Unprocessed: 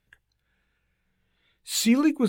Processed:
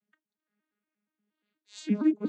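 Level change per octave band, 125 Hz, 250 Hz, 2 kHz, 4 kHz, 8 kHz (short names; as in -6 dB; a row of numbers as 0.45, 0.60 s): n/a, -5.0 dB, -15.0 dB, -19.0 dB, -22.0 dB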